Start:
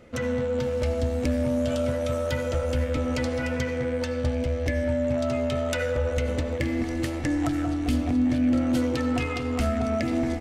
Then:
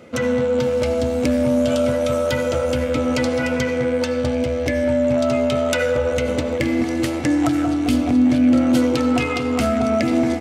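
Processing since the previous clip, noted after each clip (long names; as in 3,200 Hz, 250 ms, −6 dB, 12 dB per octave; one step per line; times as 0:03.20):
high-pass filter 130 Hz 12 dB per octave
notch filter 1,800 Hz, Q 12
level +8 dB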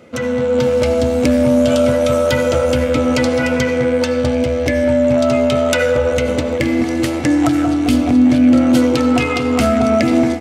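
automatic gain control gain up to 6.5 dB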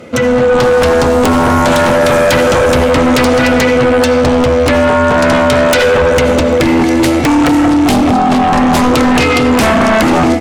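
sine wavefolder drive 11 dB, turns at −2 dBFS
level −4 dB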